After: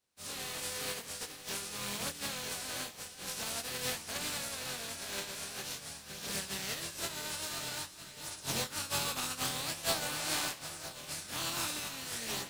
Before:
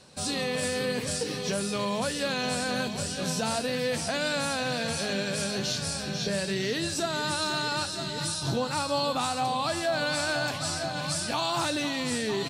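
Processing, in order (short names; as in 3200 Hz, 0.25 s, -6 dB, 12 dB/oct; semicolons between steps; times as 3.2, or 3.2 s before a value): spectral contrast lowered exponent 0.32; chorus voices 2, 0.24 Hz, delay 24 ms, depth 2.2 ms; upward expander 2.5:1, over -45 dBFS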